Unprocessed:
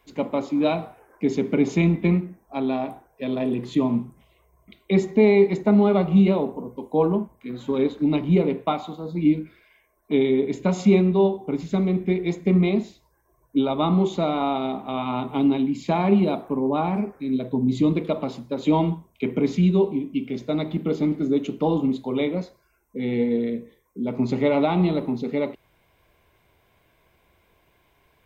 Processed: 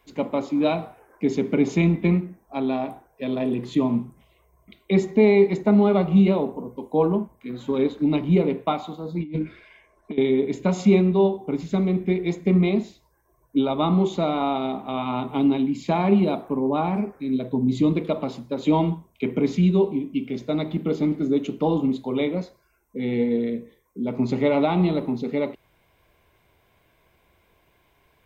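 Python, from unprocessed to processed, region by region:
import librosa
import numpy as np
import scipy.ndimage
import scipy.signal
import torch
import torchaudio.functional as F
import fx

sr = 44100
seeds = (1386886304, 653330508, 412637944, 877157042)

y = fx.chain(x, sr, fx.over_compress(threshold_db=-30.0, ratio=-1.0),
    fx.air_absorb(metres=69.0), at=(9.2, 10.18))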